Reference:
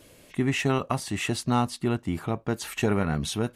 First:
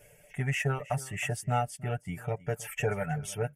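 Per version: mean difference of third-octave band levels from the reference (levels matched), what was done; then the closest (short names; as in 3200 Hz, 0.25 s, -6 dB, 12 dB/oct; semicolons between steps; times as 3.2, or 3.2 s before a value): 6.0 dB: reverb removal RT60 0.92 s; fixed phaser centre 1100 Hz, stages 6; comb 6.8 ms, depth 73%; on a send: echo 0.317 s -19 dB; on the sum: gain -2 dB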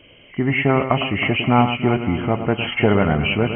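10.0 dB: nonlinear frequency compression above 2000 Hz 4:1; dynamic EQ 630 Hz, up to +5 dB, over -41 dBFS, Q 2.4; AGC gain up to 5 dB; on a send: echo with dull and thin repeats by turns 0.106 s, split 1900 Hz, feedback 78%, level -9.5 dB; on the sum: gain +2.5 dB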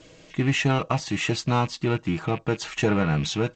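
4.0 dB: rattling part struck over -37 dBFS, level -30 dBFS; comb 6.3 ms, depth 47%; in parallel at -9 dB: hard clip -21 dBFS, distortion -13 dB; on the sum: G.722 64 kbps 16000 Hz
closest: third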